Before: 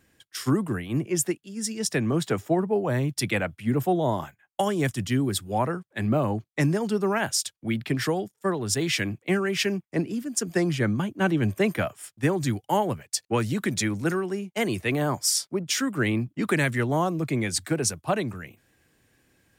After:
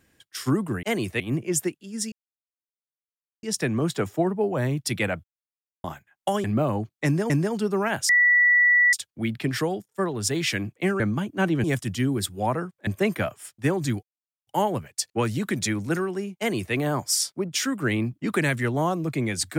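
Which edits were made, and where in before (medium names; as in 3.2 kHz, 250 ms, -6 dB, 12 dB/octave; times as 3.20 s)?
1.75 s: insert silence 1.31 s
3.56–4.16 s: mute
4.76–5.99 s: move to 11.46 s
6.60–6.85 s: loop, 2 plays
7.39 s: add tone 1.95 kHz -14.5 dBFS 0.84 s
9.46–10.82 s: delete
12.62 s: insert silence 0.44 s
14.53–14.90 s: copy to 0.83 s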